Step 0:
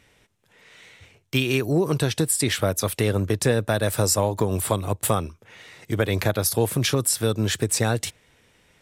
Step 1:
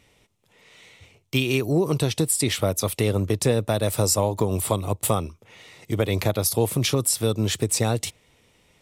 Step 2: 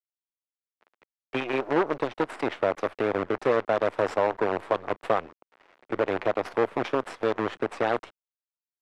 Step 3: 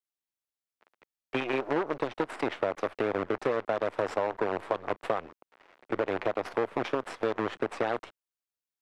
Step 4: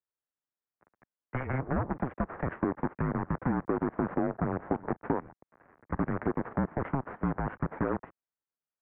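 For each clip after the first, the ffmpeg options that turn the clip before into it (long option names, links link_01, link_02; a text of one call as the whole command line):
ffmpeg -i in.wav -af "equalizer=frequency=1600:width=4.1:gain=-10.5" out.wav
ffmpeg -i in.wav -filter_complex "[0:a]acrusher=bits=4:dc=4:mix=0:aa=0.000001,lowpass=4000,acrossover=split=300 2100:gain=0.1 1 0.126[link_01][link_02][link_03];[link_01][link_02][link_03]amix=inputs=3:normalize=0" out.wav
ffmpeg -i in.wav -af "acompressor=threshold=-24dB:ratio=6" out.wav
ffmpeg -i in.wav -af "highpass=frequency=340:width_type=q:width=0.5412,highpass=frequency=340:width_type=q:width=1.307,lowpass=frequency=2100:width_type=q:width=0.5176,lowpass=frequency=2100:width_type=q:width=0.7071,lowpass=frequency=2100:width_type=q:width=1.932,afreqshift=-270" out.wav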